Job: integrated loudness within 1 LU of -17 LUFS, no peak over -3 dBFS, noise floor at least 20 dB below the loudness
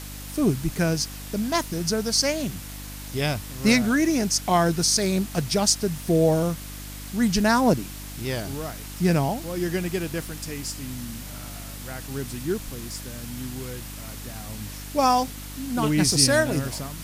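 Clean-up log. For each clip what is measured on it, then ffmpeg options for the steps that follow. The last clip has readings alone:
hum 50 Hz; harmonics up to 300 Hz; hum level -37 dBFS; noise floor -37 dBFS; noise floor target -44 dBFS; loudness -24.0 LUFS; peak -5.0 dBFS; loudness target -17.0 LUFS
-> -af "bandreject=f=50:t=h:w=4,bandreject=f=100:t=h:w=4,bandreject=f=150:t=h:w=4,bandreject=f=200:t=h:w=4,bandreject=f=250:t=h:w=4,bandreject=f=300:t=h:w=4"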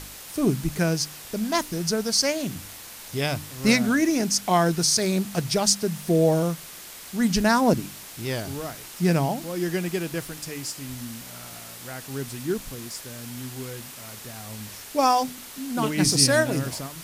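hum none; noise floor -42 dBFS; noise floor target -44 dBFS
-> -af "afftdn=nr=6:nf=-42"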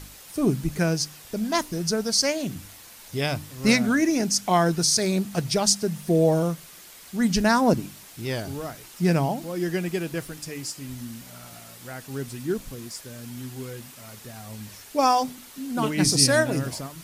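noise floor -46 dBFS; loudness -24.0 LUFS; peak -5.5 dBFS; loudness target -17.0 LUFS
-> -af "volume=7dB,alimiter=limit=-3dB:level=0:latency=1"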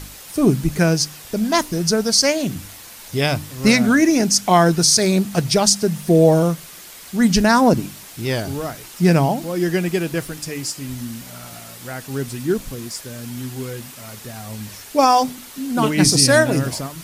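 loudness -17.5 LUFS; peak -3.0 dBFS; noise floor -39 dBFS

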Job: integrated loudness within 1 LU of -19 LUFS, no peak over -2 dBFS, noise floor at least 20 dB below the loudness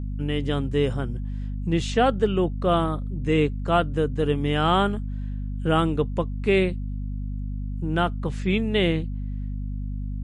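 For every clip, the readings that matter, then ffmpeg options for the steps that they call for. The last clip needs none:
hum 50 Hz; harmonics up to 250 Hz; hum level -27 dBFS; loudness -25.0 LUFS; peak -8.0 dBFS; loudness target -19.0 LUFS
-> -af "bandreject=f=50:t=h:w=6,bandreject=f=100:t=h:w=6,bandreject=f=150:t=h:w=6,bandreject=f=200:t=h:w=6,bandreject=f=250:t=h:w=6"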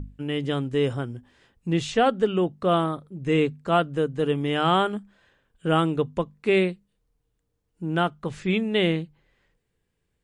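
hum none; loudness -24.5 LUFS; peak -9.5 dBFS; loudness target -19.0 LUFS
-> -af "volume=5.5dB"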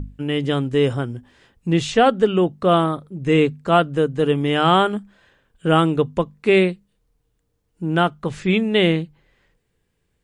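loudness -19.0 LUFS; peak -4.0 dBFS; noise floor -70 dBFS

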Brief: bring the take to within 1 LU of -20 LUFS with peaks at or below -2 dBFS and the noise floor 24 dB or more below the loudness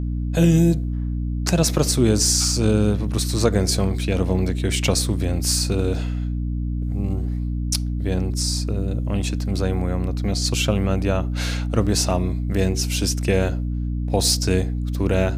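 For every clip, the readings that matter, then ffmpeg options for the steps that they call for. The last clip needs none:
hum 60 Hz; harmonics up to 300 Hz; hum level -22 dBFS; loudness -21.5 LUFS; peak -2.0 dBFS; loudness target -20.0 LUFS
-> -af "bandreject=f=60:t=h:w=4,bandreject=f=120:t=h:w=4,bandreject=f=180:t=h:w=4,bandreject=f=240:t=h:w=4,bandreject=f=300:t=h:w=4"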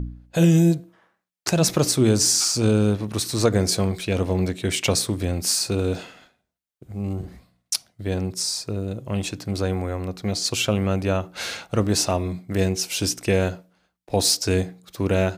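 hum none; loudness -22.5 LUFS; peak -2.0 dBFS; loudness target -20.0 LUFS
-> -af "volume=2.5dB,alimiter=limit=-2dB:level=0:latency=1"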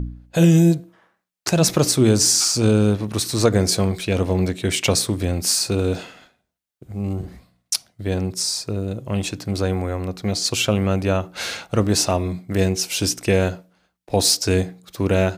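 loudness -20.0 LUFS; peak -2.0 dBFS; noise floor -75 dBFS

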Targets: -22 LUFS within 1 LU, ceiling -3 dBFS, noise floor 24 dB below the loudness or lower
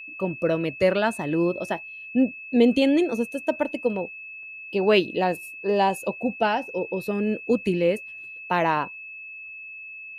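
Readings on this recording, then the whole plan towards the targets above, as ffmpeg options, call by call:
steady tone 2600 Hz; tone level -37 dBFS; loudness -24.5 LUFS; peak -7.5 dBFS; loudness target -22.0 LUFS
-> -af "bandreject=f=2.6k:w=30"
-af "volume=2.5dB"

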